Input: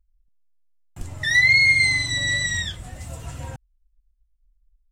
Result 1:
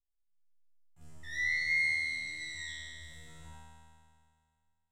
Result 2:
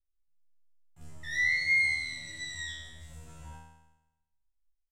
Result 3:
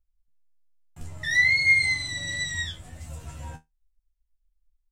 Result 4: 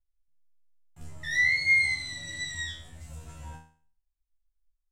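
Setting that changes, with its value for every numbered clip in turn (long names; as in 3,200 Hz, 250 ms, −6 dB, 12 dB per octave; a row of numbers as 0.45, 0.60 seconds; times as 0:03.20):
tuned comb filter, decay: 2.2, 0.99, 0.16, 0.45 seconds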